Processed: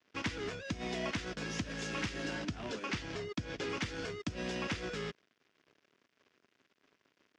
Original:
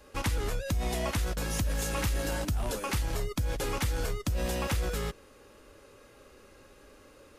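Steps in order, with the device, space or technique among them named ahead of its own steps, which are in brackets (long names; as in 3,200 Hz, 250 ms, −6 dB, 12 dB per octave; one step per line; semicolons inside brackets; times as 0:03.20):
0:02.35–0:03.70: low-pass filter 7,700 Hz 12 dB per octave
blown loudspeaker (dead-zone distortion −51 dBFS; loudspeaker in its box 180–5,400 Hz, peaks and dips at 540 Hz −8 dB, 840 Hz −9 dB, 1,200 Hz −5 dB, 4,100 Hz −5 dB)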